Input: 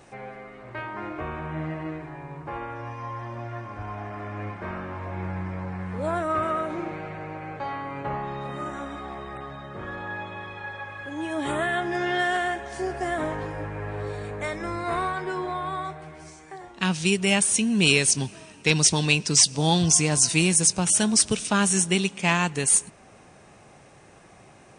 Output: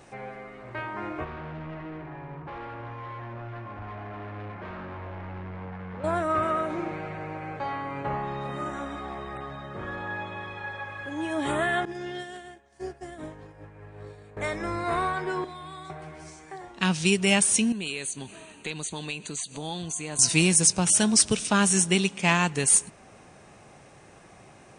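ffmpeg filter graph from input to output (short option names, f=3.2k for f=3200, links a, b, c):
-filter_complex "[0:a]asettb=1/sr,asplit=3[a][b][c];[a]atrim=end=1.244[d];[b]atrim=start=1.24:end=6.04,asetpts=PTS-STARTPTS,afade=t=in:d=0.004:c=qsin,afade=t=out:st=4.796:d=0.004:c=qsin,asoftclip=type=hard:threshold=-36dB,lowpass=2.5k[e];[c]atrim=start=6.036[f];[d][e]acrossfade=d=0.004:c1=hsin:c2=qsin[g];[g][f]acrossfade=d=0.004:c1=qsin:c2=hsin,asettb=1/sr,asplit=3[h][i][j];[h]atrim=end=11.854[k];[i]atrim=start=11.85:end=14.37,asetpts=PTS-STARTPTS,afade=t=in:d=0.004:c=qsin,afade=t=out:st=2.516:d=0.004:c=qsin,acrossover=split=470|3000[l][m][n];[m]acompressor=threshold=-39dB:ratio=3:attack=3.2:release=140:knee=2.83:detection=peak[o];[l][o][n]amix=inputs=3:normalize=0,agate=range=-33dB:threshold=-25dB:ratio=3:release=100:detection=peak[p];[j]atrim=start=14.366[q];[k][p]acrossfade=d=0.004:c1=hsin:c2=qsin[r];[r][q]acrossfade=d=0.004:c1=qsin:c2=hsin,asettb=1/sr,asplit=3[s][t][u];[s]atrim=end=15.444[v];[t]atrim=start=15.44:end=15.9,asetpts=PTS-STARTPTS,afade=t=in:d=0.004:c=qsin,afade=t=out:st=0.456:d=0.004:c=qsin,lowshelf=f=130:g=-10.5,asplit=2[w][x];[x]adelay=35,volume=-11dB[y];[w][y]amix=inputs=2:normalize=0,atrim=end_sample=20286,acrossover=split=250|3000[z][aa][ab];[aa]acompressor=threshold=-47dB:ratio=2.5:attack=3.2:release=140:knee=2.83:detection=peak[ac];[z][ac][ab]amix=inputs=3:normalize=0[ad];[u]atrim=start=15.896[ae];[v][ad]acrossfade=d=0.004:c1=hsin:c2=qsin[af];[af][ae]acrossfade=d=0.004:c1=qsin:c2=hsin,asettb=1/sr,asplit=3[ag][ah][ai];[ag]atrim=end=17.724[aj];[ah]atrim=start=17.72:end=20.19,asetpts=PTS-STARTPTS,afade=t=in:d=0.004:c=qsin,afade=t=out:st=2.466:d=0.004:c=qsin,acompressor=threshold=-32dB:ratio=3:attack=3.2:release=140:knee=1:detection=peak,asuperstop=centerf=5300:order=12:qfactor=3.8,equalizer=f=120:t=o:w=1.2:g=-7.5[ak];[ai]atrim=start=20.186[al];[aj][ak]acrossfade=d=0.004:c1=hsin:c2=qsin[am];[am][al]acrossfade=d=0.004:c1=qsin:c2=hsin"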